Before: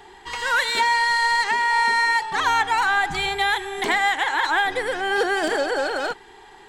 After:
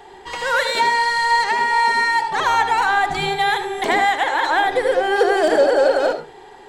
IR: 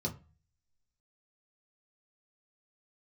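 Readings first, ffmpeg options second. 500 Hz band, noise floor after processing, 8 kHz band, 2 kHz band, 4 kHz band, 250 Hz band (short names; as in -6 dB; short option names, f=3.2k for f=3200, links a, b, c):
+9.0 dB, -42 dBFS, +0.5 dB, +0.5 dB, +0.5 dB, +5.0 dB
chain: -filter_complex "[0:a]equalizer=f=590:t=o:w=0.77:g=10.5,asplit=2[a][b];[1:a]atrim=start_sample=2205,adelay=73[c];[b][c]afir=irnorm=-1:irlink=0,volume=-10.5dB[d];[a][d]amix=inputs=2:normalize=0"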